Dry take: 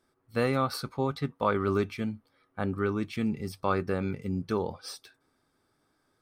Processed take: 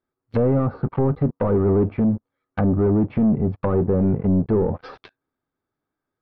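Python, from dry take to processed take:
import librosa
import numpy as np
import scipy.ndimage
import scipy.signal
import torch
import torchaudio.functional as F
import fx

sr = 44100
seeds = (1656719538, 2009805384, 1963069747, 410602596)

y = fx.leveller(x, sr, passes=5)
y = fx.env_lowpass_down(y, sr, base_hz=590.0, full_db=-17.0)
y = fx.air_absorb(y, sr, metres=310.0)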